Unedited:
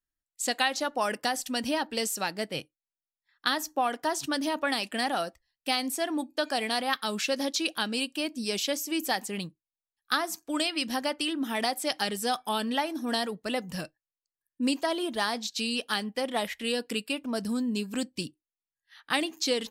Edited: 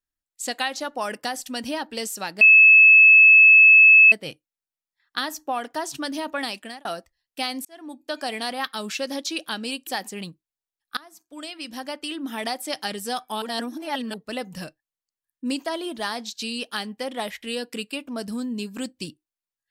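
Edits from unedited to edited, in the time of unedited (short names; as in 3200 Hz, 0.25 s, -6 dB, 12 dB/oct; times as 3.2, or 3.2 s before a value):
2.41 add tone 2600 Hz -8 dBFS 1.71 s
4.8–5.14 fade out
5.94–6.49 fade in
8.16–9.04 cut
10.14–11.49 fade in, from -22.5 dB
12.59–13.31 reverse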